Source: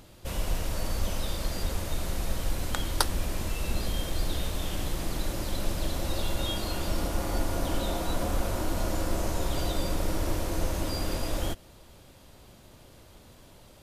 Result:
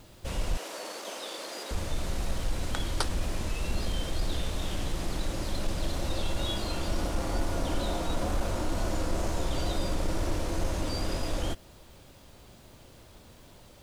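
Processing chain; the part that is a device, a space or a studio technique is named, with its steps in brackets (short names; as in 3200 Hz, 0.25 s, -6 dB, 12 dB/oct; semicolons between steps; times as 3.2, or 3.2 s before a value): compact cassette (soft clip -17 dBFS, distortion -23 dB; LPF 9100 Hz 12 dB/oct; wow and flutter; white noise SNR 36 dB); 0.57–1.71 HPF 330 Hz 24 dB/oct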